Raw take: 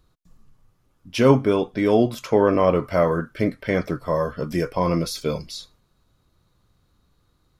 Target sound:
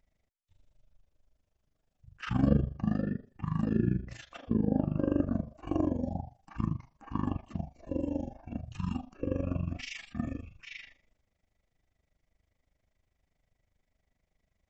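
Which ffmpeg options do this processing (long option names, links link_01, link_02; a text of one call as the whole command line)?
ffmpeg -i in.wav -af "asetrate=22800,aresample=44100,tremolo=f=25:d=0.824,volume=-8dB" out.wav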